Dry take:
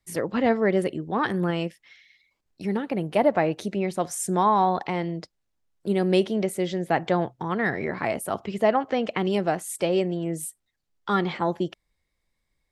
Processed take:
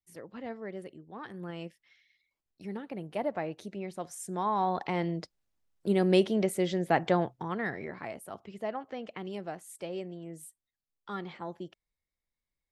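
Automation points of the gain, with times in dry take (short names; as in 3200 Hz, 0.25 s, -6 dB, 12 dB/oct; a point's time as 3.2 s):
1.27 s -18.5 dB
1.67 s -12 dB
4.3 s -12 dB
5.03 s -2.5 dB
7.1 s -2.5 dB
8.19 s -14.5 dB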